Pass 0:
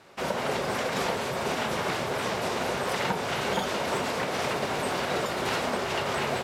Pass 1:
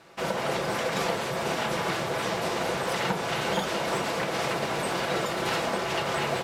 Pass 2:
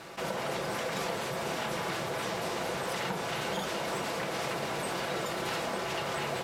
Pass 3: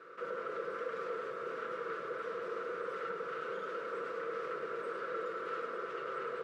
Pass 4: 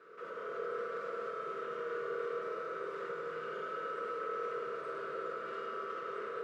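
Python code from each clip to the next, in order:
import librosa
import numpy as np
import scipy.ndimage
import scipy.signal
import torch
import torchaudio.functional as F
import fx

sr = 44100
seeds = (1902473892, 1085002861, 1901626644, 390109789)

y1 = x + 0.38 * np.pad(x, (int(6.0 * sr / 1000.0), 0))[:len(x)]
y2 = fx.high_shelf(y1, sr, hz=8800.0, db=4.5)
y2 = fx.env_flatten(y2, sr, amount_pct=50)
y2 = F.gain(torch.from_numpy(y2), -7.5).numpy()
y3 = fx.double_bandpass(y2, sr, hz=780.0, octaves=1.5)
y3 = y3 + 10.0 ** (-6.5 / 20.0) * np.pad(y3, (int(103 * sr / 1000.0), 0))[:len(y3)]
y3 = F.gain(torch.from_numpy(y3), 2.0).numpy()
y4 = fx.rev_fdn(y3, sr, rt60_s=3.2, lf_ratio=1.0, hf_ratio=0.85, size_ms=14.0, drr_db=-1.5)
y4 = F.gain(torch.from_numpy(y4), -5.0).numpy()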